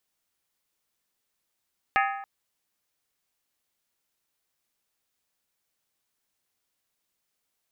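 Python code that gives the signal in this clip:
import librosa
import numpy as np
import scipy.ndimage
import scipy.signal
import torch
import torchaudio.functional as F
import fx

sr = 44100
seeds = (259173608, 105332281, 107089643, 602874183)

y = fx.strike_skin(sr, length_s=0.28, level_db=-21.0, hz=790.0, decay_s=0.92, tilt_db=2, modes=8)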